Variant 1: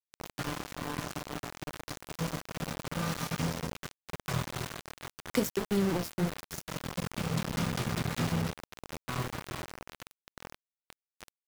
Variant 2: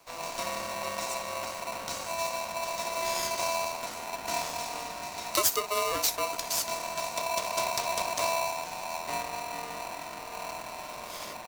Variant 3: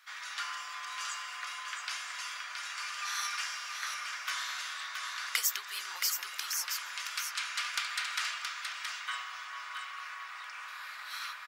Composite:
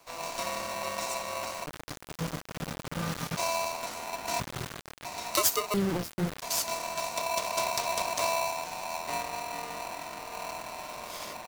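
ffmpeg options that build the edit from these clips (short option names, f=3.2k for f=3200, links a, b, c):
-filter_complex "[0:a]asplit=3[a][b][c];[1:a]asplit=4[d][e][f][g];[d]atrim=end=1.662[h];[a]atrim=start=1.658:end=3.372[i];[e]atrim=start=3.368:end=4.402[j];[b]atrim=start=4.398:end=5.052[k];[f]atrim=start=5.048:end=5.742[l];[c]atrim=start=5.738:end=6.422[m];[g]atrim=start=6.418[n];[h][i]acrossfade=d=0.004:c1=hsin:c2=hsin[o];[o][j]acrossfade=d=0.004:c1=hsin:c2=hsin[p];[p][k]acrossfade=d=0.004:c1=hsin:c2=hsin[q];[q][l]acrossfade=d=0.004:c1=hsin:c2=hsin[r];[r][m]acrossfade=d=0.004:c1=hsin:c2=hsin[s];[s][n]acrossfade=d=0.004:c1=hsin:c2=hsin"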